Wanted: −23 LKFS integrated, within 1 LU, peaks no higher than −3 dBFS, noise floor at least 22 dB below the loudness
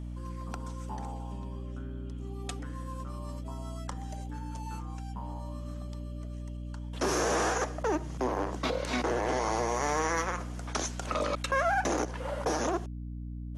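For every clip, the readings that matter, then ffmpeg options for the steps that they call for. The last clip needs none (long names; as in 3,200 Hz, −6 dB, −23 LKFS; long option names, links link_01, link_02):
mains hum 60 Hz; hum harmonics up to 300 Hz; level of the hum −36 dBFS; integrated loudness −33.5 LKFS; sample peak −17.0 dBFS; target loudness −23.0 LKFS
→ -af "bandreject=frequency=60:width_type=h:width=4,bandreject=frequency=120:width_type=h:width=4,bandreject=frequency=180:width_type=h:width=4,bandreject=frequency=240:width_type=h:width=4,bandreject=frequency=300:width_type=h:width=4"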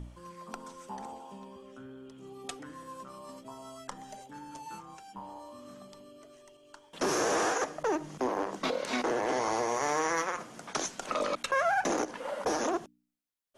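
mains hum none found; integrated loudness −31.5 LKFS; sample peak −18.5 dBFS; target loudness −23.0 LKFS
→ -af "volume=8.5dB"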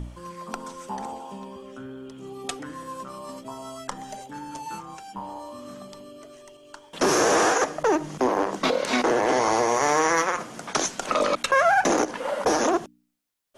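integrated loudness −23.0 LKFS; sample peak −10.0 dBFS; background noise floor −54 dBFS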